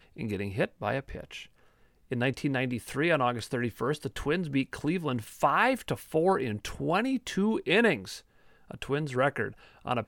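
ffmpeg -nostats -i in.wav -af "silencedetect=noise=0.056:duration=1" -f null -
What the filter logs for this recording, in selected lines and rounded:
silence_start: 0.99
silence_end: 2.12 | silence_duration: 1.13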